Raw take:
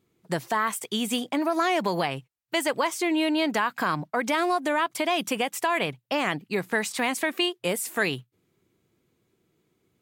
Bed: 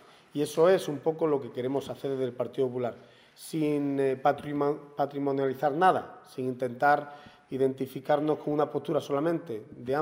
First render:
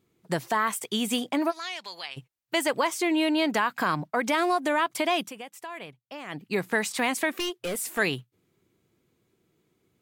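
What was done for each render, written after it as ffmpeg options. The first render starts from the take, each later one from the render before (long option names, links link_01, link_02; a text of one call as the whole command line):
ffmpeg -i in.wav -filter_complex "[0:a]asplit=3[link_01][link_02][link_03];[link_01]afade=type=out:start_time=1.5:duration=0.02[link_04];[link_02]bandpass=frequency=4300:width_type=q:width=1.3,afade=type=in:start_time=1.5:duration=0.02,afade=type=out:start_time=2.16:duration=0.02[link_05];[link_03]afade=type=in:start_time=2.16:duration=0.02[link_06];[link_04][link_05][link_06]amix=inputs=3:normalize=0,asplit=3[link_07][link_08][link_09];[link_07]afade=type=out:start_time=7.33:duration=0.02[link_10];[link_08]asoftclip=type=hard:threshold=-27dB,afade=type=in:start_time=7.33:duration=0.02,afade=type=out:start_time=7.97:duration=0.02[link_11];[link_09]afade=type=in:start_time=7.97:duration=0.02[link_12];[link_10][link_11][link_12]amix=inputs=3:normalize=0,asplit=3[link_13][link_14][link_15];[link_13]atrim=end=5.32,asetpts=PTS-STARTPTS,afade=type=out:start_time=5.16:duration=0.16:silence=0.199526[link_16];[link_14]atrim=start=5.32:end=6.28,asetpts=PTS-STARTPTS,volume=-14dB[link_17];[link_15]atrim=start=6.28,asetpts=PTS-STARTPTS,afade=type=in:duration=0.16:silence=0.199526[link_18];[link_16][link_17][link_18]concat=n=3:v=0:a=1" out.wav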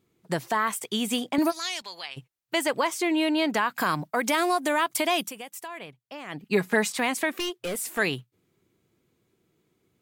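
ffmpeg -i in.wav -filter_complex "[0:a]asettb=1/sr,asplit=3[link_01][link_02][link_03];[link_01]atrim=end=1.384[link_04];[link_02]atrim=start=1.38:end=1.82,asetpts=PTS-STARTPTS,afade=type=in:duration=0.004:curve=qsin,afade=type=out:start_time=0.436:duration=0.004:curve=qsin,bass=frequency=250:gain=13,treble=frequency=4000:gain=13[link_05];[link_03]atrim=start=1.816[link_06];[link_04][link_05]acrossfade=duration=0.004:curve1=hsin:curve2=qsin[link_07];[link_07][link_06]acrossfade=duration=0.004:curve1=qsin:curve2=hsin,asettb=1/sr,asplit=3[link_08][link_09][link_10];[link_08]atrim=end=3.754[link_11];[link_09]atrim=start=3.75:end=5.68,asetpts=PTS-STARTPTS,afade=type=in:duration=0.004:curve=qsin,afade=type=out:start_time=1.926:duration=0.004:curve=qsin,highshelf=frequency=6400:gain=11[link_12];[link_10]atrim=start=5.676[link_13];[link_11][link_12]acrossfade=duration=0.004:curve1=hsin:curve2=qsin[link_14];[link_14][link_13]acrossfade=duration=0.004:curve1=qsin:curve2=hsin,asettb=1/sr,asplit=3[link_15][link_16][link_17];[link_15]atrim=end=6.434[link_18];[link_16]atrim=start=6.43:end=6.91,asetpts=PTS-STARTPTS,afade=type=in:duration=0.004:curve=qsin,afade=type=out:start_time=0.476:duration=0.004:curve=qsin,aecho=1:1:4.8:0.82,atrim=end_sample=21168[link_19];[link_17]atrim=start=6.906[link_20];[link_18][link_19]acrossfade=duration=0.004:curve1=hsin:curve2=qsin[link_21];[link_21][link_20]acrossfade=duration=0.004:curve1=qsin:curve2=hsin" out.wav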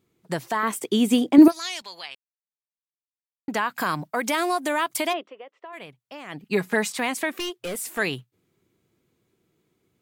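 ffmpeg -i in.wav -filter_complex "[0:a]asettb=1/sr,asplit=3[link_01][link_02][link_03];[link_01]atrim=end=0.634[link_04];[link_02]atrim=start=0.63:end=1.48,asetpts=PTS-STARTPTS,afade=type=in:duration=0.004:curve=qsin,afade=type=out:start_time=0.846:duration=0.004:curve=qsin,equalizer=frequency=320:width_type=o:width=1.2:gain=14[link_05];[link_03]atrim=start=1.476[link_06];[link_04][link_05]acrossfade=duration=0.004:curve1=hsin:curve2=qsin[link_07];[link_07][link_06]acrossfade=duration=0.004:curve1=qsin:curve2=hsin,asplit=3[link_08][link_09][link_10];[link_08]afade=type=out:start_time=5.12:duration=0.02[link_11];[link_09]highpass=frequency=350:width=0.5412,highpass=frequency=350:width=1.3066,equalizer=frequency=400:width_type=q:width=4:gain=3,equalizer=frequency=570:width_type=q:width=4:gain=4,equalizer=frequency=830:width_type=q:width=4:gain=-7,equalizer=frequency=1600:width_type=q:width=4:gain=-7,equalizer=frequency=2400:width_type=q:width=4:gain=-8,lowpass=frequency=2500:width=0.5412,lowpass=frequency=2500:width=1.3066,afade=type=in:start_time=5.12:duration=0.02,afade=type=out:start_time=5.72:duration=0.02[link_12];[link_10]afade=type=in:start_time=5.72:duration=0.02[link_13];[link_11][link_12][link_13]amix=inputs=3:normalize=0,asplit=3[link_14][link_15][link_16];[link_14]atrim=end=2.15,asetpts=PTS-STARTPTS,afade=type=out:start_time=2.146:duration=0.004:curve=hsin[link_17];[link_15]atrim=start=2.15:end=3.48,asetpts=PTS-STARTPTS,volume=0[link_18];[link_16]atrim=start=3.48,asetpts=PTS-STARTPTS,afade=type=in:duration=0.004:curve=hsin[link_19];[link_17][link_18][link_19]concat=n=3:v=0:a=1" out.wav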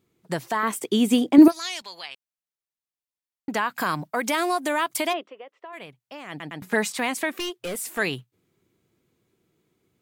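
ffmpeg -i in.wav -filter_complex "[0:a]asplit=4[link_01][link_02][link_03][link_04];[link_01]atrim=end=6.402[link_05];[link_02]atrim=start=6.288:end=6.402[link_06];[link_03]atrim=start=6.288:end=6.402[link_07];[link_04]atrim=start=6.618[link_08];[link_05][link_06]acrossfade=duration=0.004:curve1=hsin:curve2=hsin[link_09];[link_09][link_07]acrossfade=duration=0.004:curve1=hsin:curve2=hsin[link_10];[link_10][link_08]acrossfade=duration=0.004:curve1=hsin:curve2=hsin" out.wav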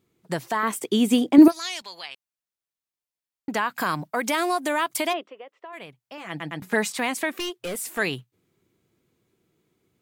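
ffmpeg -i in.wav -filter_complex "[0:a]asettb=1/sr,asplit=3[link_01][link_02][link_03];[link_01]atrim=end=6.174[link_04];[link_02]atrim=start=6.17:end=6.6,asetpts=PTS-STARTPTS,afade=type=in:duration=0.004:curve=qsin,afade=type=out:start_time=0.426:duration=0.004:curve=qsin,aecho=1:1:6:0.65,atrim=end_sample=18963[link_05];[link_03]atrim=start=6.596[link_06];[link_04][link_05]acrossfade=duration=0.004:curve1=hsin:curve2=qsin[link_07];[link_07][link_06]acrossfade=duration=0.004:curve1=qsin:curve2=hsin" out.wav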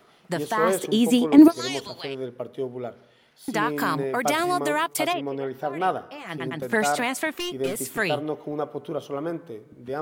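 ffmpeg -i in.wav -i bed.wav -filter_complex "[1:a]volume=-2dB[link_01];[0:a][link_01]amix=inputs=2:normalize=0" out.wav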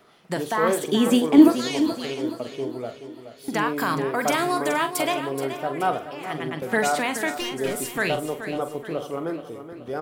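ffmpeg -i in.wav -filter_complex "[0:a]asplit=2[link_01][link_02];[link_02]adelay=44,volume=-10.5dB[link_03];[link_01][link_03]amix=inputs=2:normalize=0,aecho=1:1:426|852|1278|1704|2130:0.282|0.13|0.0596|0.0274|0.0126" out.wav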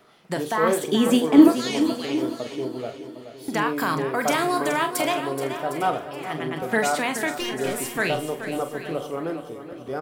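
ffmpeg -i in.wav -filter_complex "[0:a]asplit=2[link_01][link_02];[link_02]adelay=31,volume=-13dB[link_03];[link_01][link_03]amix=inputs=2:normalize=0,aecho=1:1:757:0.188" out.wav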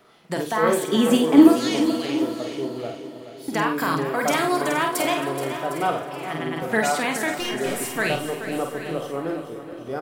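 ffmpeg -i in.wav -filter_complex "[0:a]asplit=2[link_01][link_02];[link_02]adelay=50,volume=-6dB[link_03];[link_01][link_03]amix=inputs=2:normalize=0,aecho=1:1:269|538|807|1076|1345:0.133|0.0773|0.0449|0.026|0.0151" out.wav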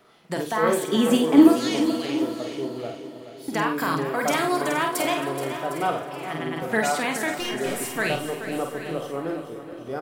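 ffmpeg -i in.wav -af "volume=-1.5dB" out.wav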